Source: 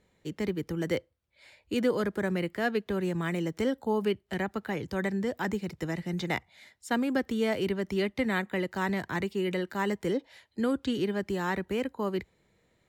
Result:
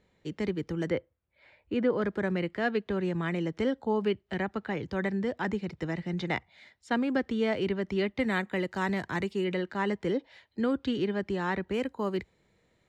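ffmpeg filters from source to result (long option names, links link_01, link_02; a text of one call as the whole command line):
ffmpeg -i in.wav -af "asetnsamples=nb_out_samples=441:pad=0,asendcmd='0.9 lowpass f 2200;2.02 lowpass f 4400;8.2 lowpass f 8300;9.44 lowpass f 4500;11.74 lowpass f 8500',lowpass=5800" out.wav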